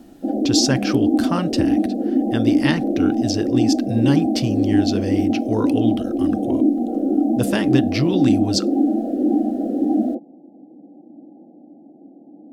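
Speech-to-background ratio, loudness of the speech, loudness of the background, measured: -3.5 dB, -23.5 LUFS, -20.0 LUFS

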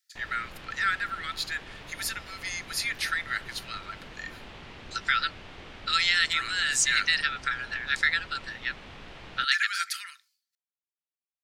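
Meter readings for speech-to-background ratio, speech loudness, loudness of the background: 17.5 dB, -28.0 LUFS, -45.5 LUFS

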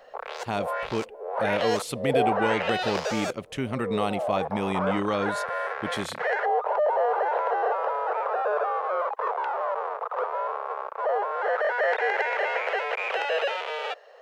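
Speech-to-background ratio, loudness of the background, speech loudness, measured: -3.0 dB, -27.5 LUFS, -30.5 LUFS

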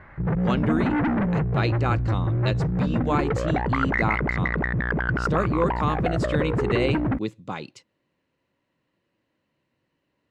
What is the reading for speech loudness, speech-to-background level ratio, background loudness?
-29.0 LUFS, -4.0 dB, -25.0 LUFS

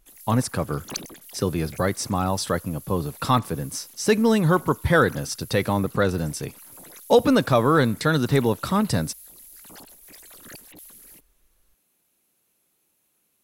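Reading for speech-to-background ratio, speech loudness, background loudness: 19.5 dB, -23.0 LUFS, -42.5 LUFS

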